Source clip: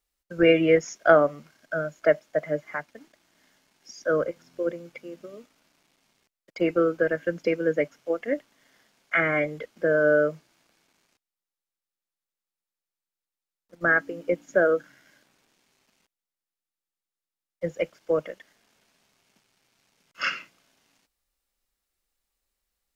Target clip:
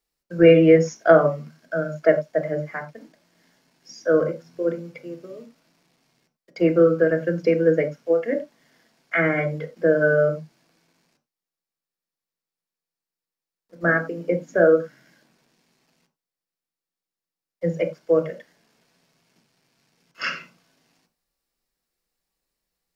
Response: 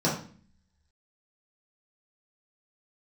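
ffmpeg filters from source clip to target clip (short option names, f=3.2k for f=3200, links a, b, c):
-filter_complex "[0:a]asplit=2[a][b];[1:a]atrim=start_sample=2205,atrim=end_sample=4410[c];[b][c]afir=irnorm=-1:irlink=0,volume=-14.5dB[d];[a][d]amix=inputs=2:normalize=0,volume=-1.5dB"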